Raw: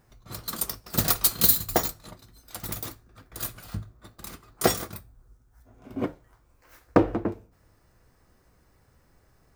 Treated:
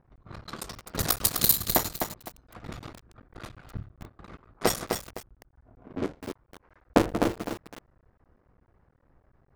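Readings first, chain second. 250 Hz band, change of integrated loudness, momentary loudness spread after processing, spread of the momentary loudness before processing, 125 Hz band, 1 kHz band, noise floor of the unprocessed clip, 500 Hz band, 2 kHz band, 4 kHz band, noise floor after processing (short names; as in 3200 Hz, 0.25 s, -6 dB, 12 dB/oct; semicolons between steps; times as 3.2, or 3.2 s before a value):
-1.0 dB, -2.0 dB, 23 LU, 23 LU, -2.5 dB, -0.5 dB, -63 dBFS, -1.5 dB, 0.0 dB, -1.0 dB, -67 dBFS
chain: cycle switcher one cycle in 3, muted; low-pass opened by the level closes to 1400 Hz, open at -22.5 dBFS; lo-fi delay 0.255 s, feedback 35%, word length 6-bit, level -4.5 dB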